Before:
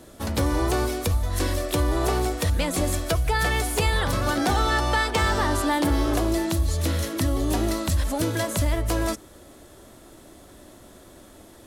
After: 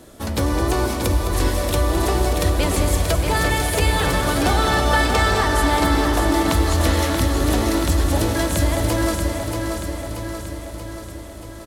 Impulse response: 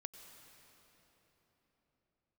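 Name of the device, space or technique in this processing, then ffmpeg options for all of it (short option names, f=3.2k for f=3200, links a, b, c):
cave: -filter_complex "[0:a]asettb=1/sr,asplit=3[a][b][c];[a]atrim=end=6.464[d];[b]atrim=start=6.46:end=7.19,asetpts=PTS-STARTPTS,afade=t=in:d=0.004:c=qsin,afade=t=out:st=0.726:d=0.004:c=qsin,equalizer=f=1.4k:w=0.32:g=6[e];[c]atrim=start=7.186[f];[d][e]acrossfade=d=0.004:c1=hsin:c2=qsin[g];[g][f]acrossfade=d=0.004:c1=qsin:c2=hsin,aecho=1:1:210:0.335,aecho=1:1:632|1264|1896|2528|3160|3792|4424|5056:0.501|0.296|0.174|0.103|0.0607|0.0358|0.0211|0.0125[h];[1:a]atrim=start_sample=2205[i];[h][i]afir=irnorm=-1:irlink=0,volume=7.5dB"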